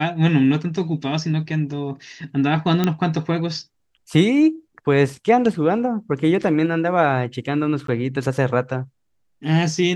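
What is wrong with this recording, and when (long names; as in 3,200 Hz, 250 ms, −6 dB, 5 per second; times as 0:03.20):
0:02.84: click −6 dBFS
0:07.87–0:07.88: drop-out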